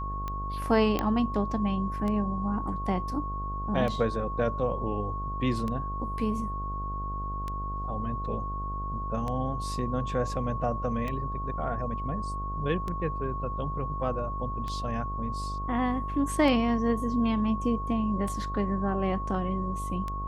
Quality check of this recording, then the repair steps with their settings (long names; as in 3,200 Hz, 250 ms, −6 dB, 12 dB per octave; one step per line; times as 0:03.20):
mains buzz 50 Hz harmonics 16 −35 dBFS
scratch tick 33 1/3 rpm −21 dBFS
whistle 1,100 Hz −34 dBFS
0:00.99: click −13 dBFS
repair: click removal
hum removal 50 Hz, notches 16
notch filter 1,100 Hz, Q 30